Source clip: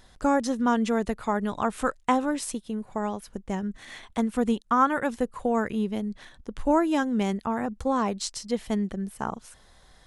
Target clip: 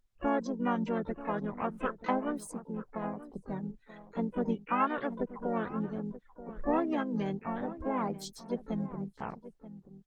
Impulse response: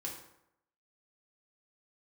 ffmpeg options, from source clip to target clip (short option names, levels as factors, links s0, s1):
-filter_complex "[0:a]afftdn=nr=29:nf=-34,asplit=4[s0][s1][s2][s3];[s1]asetrate=35002,aresample=44100,atempo=1.25992,volume=0.501[s4];[s2]asetrate=55563,aresample=44100,atempo=0.793701,volume=0.2[s5];[s3]asetrate=88200,aresample=44100,atempo=0.5,volume=0.2[s6];[s0][s4][s5][s6]amix=inputs=4:normalize=0,asplit=2[s7][s8];[s8]adelay=932.9,volume=0.2,highshelf=f=4000:g=-21[s9];[s7][s9]amix=inputs=2:normalize=0,volume=0.376" -ar 48000 -c:a libopus -b:a 24k